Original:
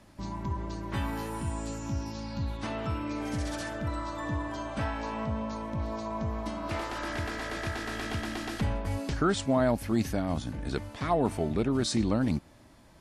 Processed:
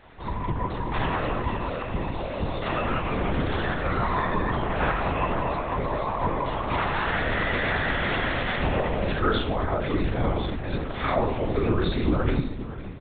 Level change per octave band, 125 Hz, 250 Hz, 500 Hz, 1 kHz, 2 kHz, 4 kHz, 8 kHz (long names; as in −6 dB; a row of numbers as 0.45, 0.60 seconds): +5.0 dB, +2.0 dB, +5.5 dB, +8.5 dB, +10.0 dB, +5.5 dB, below −35 dB